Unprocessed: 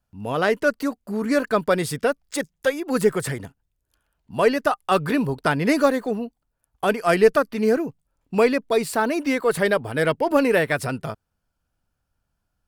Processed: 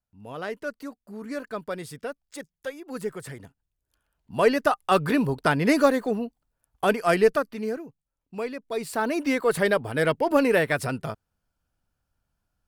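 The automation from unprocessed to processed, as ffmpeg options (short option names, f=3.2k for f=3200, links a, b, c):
-af "volume=10.5dB,afade=t=in:st=3.24:d=1.33:silence=0.266073,afade=t=out:st=6.93:d=0.89:silence=0.237137,afade=t=in:st=8.62:d=0.59:silence=0.266073"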